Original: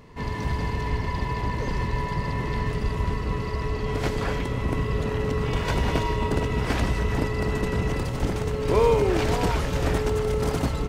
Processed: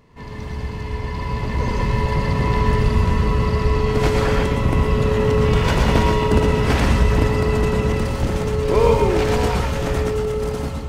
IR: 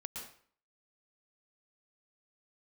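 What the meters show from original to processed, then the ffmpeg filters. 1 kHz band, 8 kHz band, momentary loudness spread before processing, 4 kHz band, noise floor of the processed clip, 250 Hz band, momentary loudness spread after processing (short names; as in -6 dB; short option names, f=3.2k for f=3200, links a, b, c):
+6.0 dB, +5.0 dB, 5 LU, +6.0 dB, -29 dBFS, +6.5 dB, 9 LU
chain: -filter_complex "[1:a]atrim=start_sample=2205,atrim=end_sample=6174[a];[0:a][a]afir=irnorm=-1:irlink=0,dynaudnorm=f=430:g=7:m=11dB"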